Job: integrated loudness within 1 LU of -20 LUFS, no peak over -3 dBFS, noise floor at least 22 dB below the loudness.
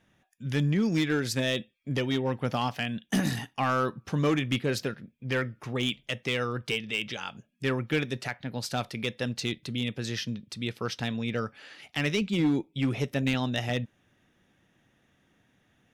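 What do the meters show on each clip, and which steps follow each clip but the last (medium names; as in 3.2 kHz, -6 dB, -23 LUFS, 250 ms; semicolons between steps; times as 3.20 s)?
clipped samples 0.8%; clipping level -19.5 dBFS; loudness -30.0 LUFS; peak level -19.5 dBFS; loudness target -20.0 LUFS
-> clip repair -19.5 dBFS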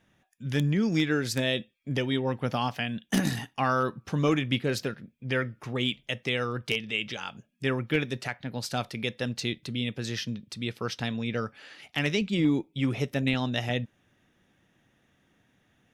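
clipped samples 0.0%; loudness -29.5 LUFS; peak level -10.5 dBFS; loudness target -20.0 LUFS
-> trim +9.5 dB; peak limiter -3 dBFS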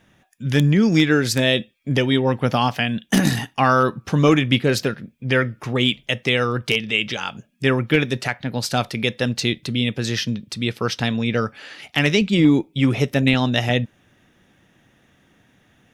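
loudness -20.0 LUFS; peak level -3.0 dBFS; noise floor -60 dBFS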